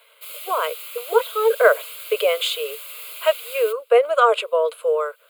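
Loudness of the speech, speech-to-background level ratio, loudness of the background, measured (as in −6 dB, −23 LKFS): −20.5 LKFS, 13.0 dB, −33.5 LKFS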